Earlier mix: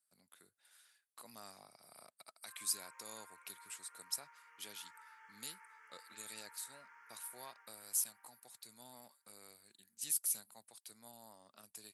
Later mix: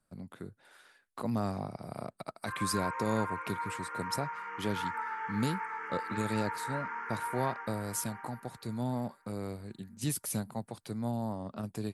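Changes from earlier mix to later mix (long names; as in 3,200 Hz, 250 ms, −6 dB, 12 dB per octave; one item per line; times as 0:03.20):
background +7.0 dB
master: remove first difference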